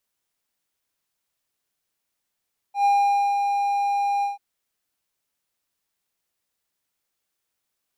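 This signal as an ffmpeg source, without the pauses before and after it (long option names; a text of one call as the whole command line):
ffmpeg -f lavfi -i "aevalsrc='0.224*(1-4*abs(mod(806*t+0.25,1)-0.5))':duration=1.638:sample_rate=44100,afade=type=in:duration=0.108,afade=type=out:start_time=0.108:duration=0.507:silence=0.562,afade=type=out:start_time=1.49:duration=0.148" out.wav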